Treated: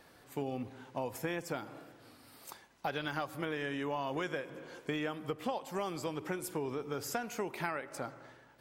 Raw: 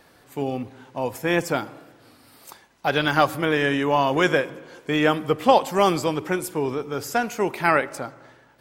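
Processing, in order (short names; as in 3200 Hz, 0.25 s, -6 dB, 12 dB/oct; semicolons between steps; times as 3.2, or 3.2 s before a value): compressor 10:1, threshold -27 dBFS, peak gain reduction 17 dB; gain -5.5 dB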